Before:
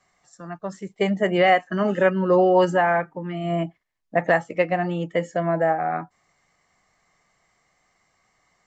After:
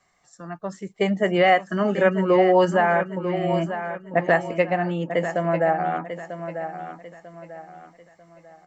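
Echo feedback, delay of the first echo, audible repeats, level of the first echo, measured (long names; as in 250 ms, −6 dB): 35%, 944 ms, 3, −10.0 dB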